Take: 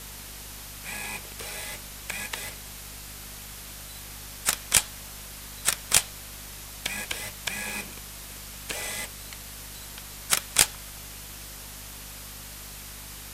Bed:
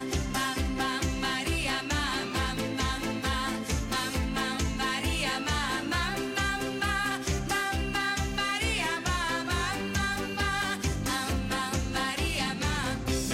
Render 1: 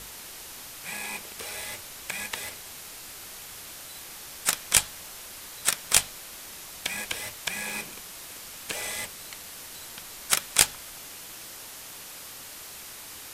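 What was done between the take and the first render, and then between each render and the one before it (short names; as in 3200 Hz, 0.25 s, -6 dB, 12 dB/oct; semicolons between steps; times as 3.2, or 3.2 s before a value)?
notches 50/100/150/200/250 Hz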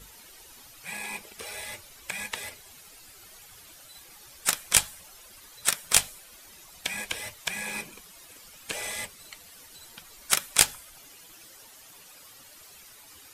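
denoiser 12 dB, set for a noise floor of -43 dBFS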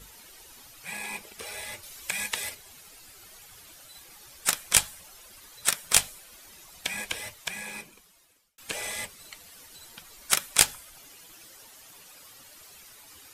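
1.83–2.55 high shelf 2700 Hz +6.5 dB; 7.11–8.58 fade out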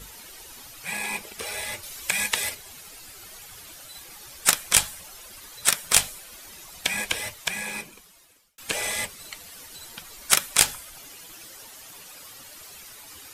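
maximiser +6 dB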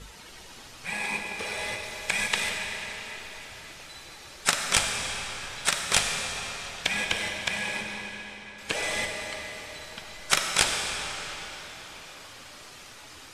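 air absorption 69 m; digital reverb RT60 4.6 s, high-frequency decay 0.85×, pre-delay 15 ms, DRR 1.5 dB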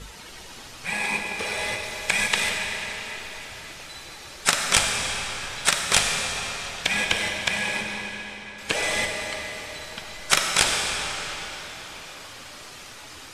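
gain +4.5 dB; limiter -2 dBFS, peak gain reduction 2.5 dB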